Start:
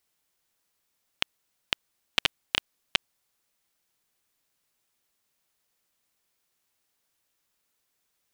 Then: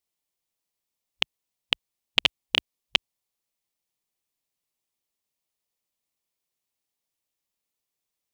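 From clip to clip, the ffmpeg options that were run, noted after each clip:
-af "acontrast=87,afwtdn=0.00794,equalizer=f=1.5k:w=2.9:g=-8.5,volume=1dB"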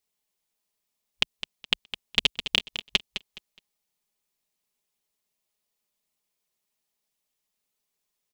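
-filter_complex "[0:a]aecho=1:1:4.8:0.47,acrossover=split=480|3000[a][b][c];[b]acompressor=threshold=-30dB:ratio=6[d];[a][d][c]amix=inputs=3:normalize=0,asplit=2[e][f];[f]aecho=0:1:209|418|627:0.282|0.0705|0.0176[g];[e][g]amix=inputs=2:normalize=0,volume=2dB"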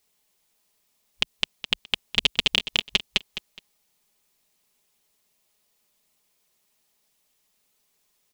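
-af "alimiter=level_in=12dB:limit=-1dB:release=50:level=0:latency=1,volume=-1dB"

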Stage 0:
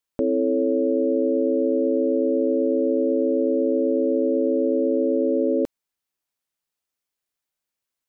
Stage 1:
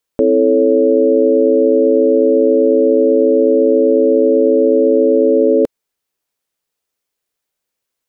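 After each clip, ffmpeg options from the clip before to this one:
-af "equalizer=f=460:t=o:w=0.6:g=6,volume=6.5dB"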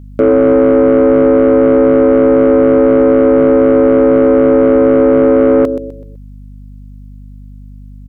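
-af "aecho=1:1:126|252|378|504:0.282|0.0986|0.0345|0.0121,acontrast=86,aeval=exprs='val(0)+0.0316*(sin(2*PI*50*n/s)+sin(2*PI*2*50*n/s)/2+sin(2*PI*3*50*n/s)/3+sin(2*PI*4*50*n/s)/4+sin(2*PI*5*50*n/s)/5)':c=same,volume=-1dB"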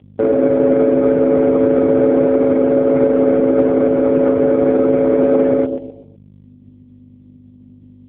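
-af "volume=-3.5dB" -ar 8000 -c:a libopencore_amrnb -b:a 4750

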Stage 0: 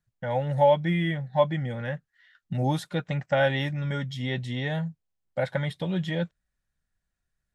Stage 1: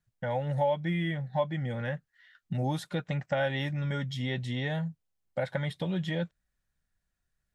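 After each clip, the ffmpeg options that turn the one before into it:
-af "acompressor=threshold=-30dB:ratio=2"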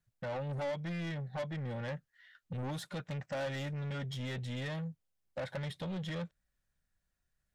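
-af "asoftclip=type=tanh:threshold=-34dB,equalizer=f=560:w=7.5:g=3,volume=-1.5dB"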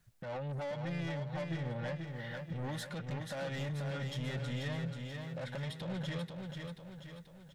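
-filter_complex "[0:a]acompressor=threshold=-50dB:ratio=5,alimiter=level_in=24dB:limit=-24dB:level=0:latency=1:release=122,volume=-24dB,asplit=2[a][b];[b]aecho=0:1:485|970|1455|1940|2425|2910:0.562|0.287|0.146|0.0746|0.038|0.0194[c];[a][c]amix=inputs=2:normalize=0,volume=12dB"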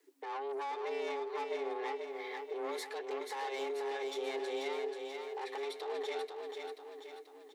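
-af "afreqshift=270"

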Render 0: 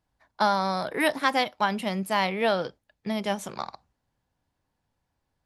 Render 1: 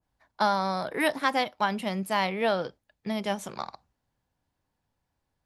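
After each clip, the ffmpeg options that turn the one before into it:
-af "adynamicequalizer=threshold=0.0224:dfrequency=1800:dqfactor=0.7:tfrequency=1800:tqfactor=0.7:attack=5:release=100:ratio=0.375:range=1.5:mode=cutabove:tftype=highshelf,volume=-1.5dB"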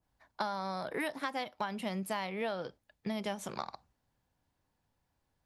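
-af "acompressor=threshold=-33dB:ratio=6"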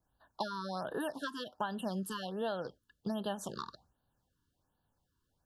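-af "asuperstop=centerf=2200:order=20:qfactor=2.3,afftfilt=real='re*(1-between(b*sr/1024,620*pow(7000/620,0.5+0.5*sin(2*PI*1.3*pts/sr))/1.41,620*pow(7000/620,0.5+0.5*sin(2*PI*1.3*pts/sr))*1.41))':imag='im*(1-between(b*sr/1024,620*pow(7000/620,0.5+0.5*sin(2*PI*1.3*pts/sr))/1.41,620*pow(7000/620,0.5+0.5*sin(2*PI*1.3*pts/sr))*1.41))':win_size=1024:overlap=0.75"

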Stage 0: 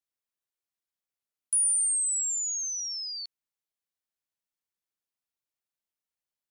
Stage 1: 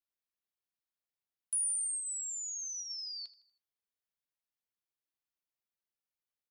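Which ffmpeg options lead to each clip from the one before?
-af "flanger=delay=1.6:depth=4.9:regen=-83:speed=0.5:shape=sinusoidal,equalizer=f=7.8k:t=o:w=0.77:g=-5.5,aecho=1:1:80|160|240|320:0.119|0.057|0.0274|0.0131"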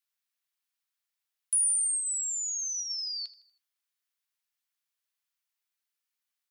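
-af "highpass=1.2k,volume=7dB"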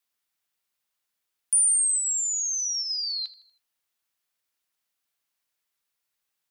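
-af "afreqshift=-370,volume=5dB"

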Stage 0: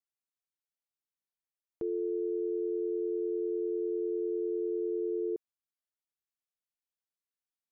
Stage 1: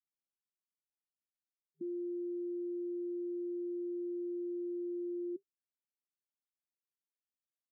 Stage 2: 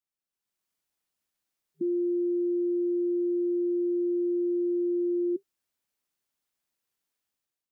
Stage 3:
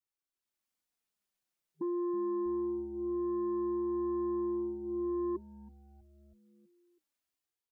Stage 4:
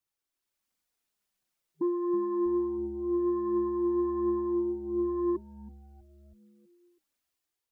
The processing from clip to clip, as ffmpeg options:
-af "afftfilt=real='re*between(b*sr/4096,160,390)':imag='im*between(b*sr/4096,160,390)':win_size=4096:overlap=0.75,volume=-3dB"
-af "dynaudnorm=f=130:g=7:m=11.5dB"
-filter_complex "[0:a]flanger=delay=2.1:depth=4.4:regen=-24:speed=0.26:shape=triangular,aeval=exprs='0.0596*sin(PI/2*1.41*val(0)/0.0596)':c=same,asplit=6[a][b][c][d][e][f];[b]adelay=323,afreqshift=-140,volume=-20dB[g];[c]adelay=646,afreqshift=-280,volume=-24.2dB[h];[d]adelay=969,afreqshift=-420,volume=-28.3dB[i];[e]adelay=1292,afreqshift=-560,volume=-32.5dB[j];[f]adelay=1615,afreqshift=-700,volume=-36.6dB[k];[a][g][h][i][j][k]amix=inputs=6:normalize=0,volume=-7dB"
-af "aphaser=in_gain=1:out_gain=1:delay=3.5:decay=0.3:speed=1.4:type=triangular,volume=4dB"

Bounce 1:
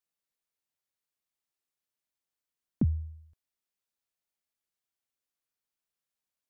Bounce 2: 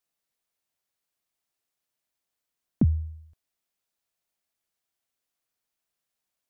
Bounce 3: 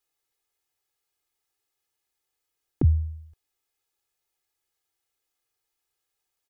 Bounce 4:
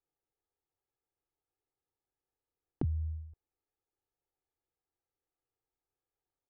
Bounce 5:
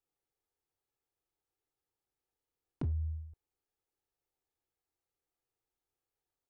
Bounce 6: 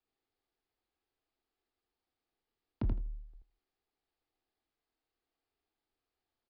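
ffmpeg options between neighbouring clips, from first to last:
-af "equalizer=f=680:t=o:w=0.25:g=4,volume=5dB"
-af "aecho=1:1:2.4:0.94"
-af "acompressor=threshold=-25dB:ratio=16,alimiter=limit=-18.5dB:level=0:latency=1:release=367,adynamicsmooth=sensitivity=6:basefreq=900"
-af "volume=29.5dB,asoftclip=hard,volume=-29.5dB"
-filter_complex "[0:a]asplit=2[a][b];[b]aecho=0:1:81|162|243:0.596|0.0953|0.0152[c];[a][c]amix=inputs=2:normalize=0,afreqshift=-41,aresample=11025,aresample=44100,volume=2.5dB"

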